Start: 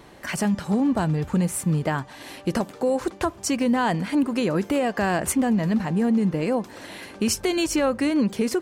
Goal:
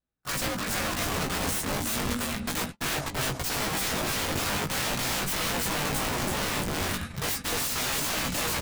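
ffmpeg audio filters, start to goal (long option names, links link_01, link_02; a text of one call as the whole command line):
ffmpeg -i in.wav -filter_complex "[0:a]afreqshift=-82,aecho=1:1:332|664|996|1328:0.631|0.215|0.0729|0.0248,aeval=exprs='(mod(15.8*val(0)+1,2)-1)/15.8':channel_layout=same,asplit=2[link_01][link_02];[link_02]adelay=18,volume=-4dB[link_03];[link_01][link_03]amix=inputs=2:normalize=0,afreqshift=-300,aeval=exprs='val(0)+0.00398*(sin(2*PI*60*n/s)+sin(2*PI*2*60*n/s)/2+sin(2*PI*3*60*n/s)/3+sin(2*PI*4*60*n/s)/4+sin(2*PI*5*60*n/s)/5)':channel_layout=same,flanger=delay=5.7:depth=5.9:regen=75:speed=0.36:shape=triangular,agate=range=-43dB:threshold=-37dB:ratio=16:detection=peak,volume=3dB" out.wav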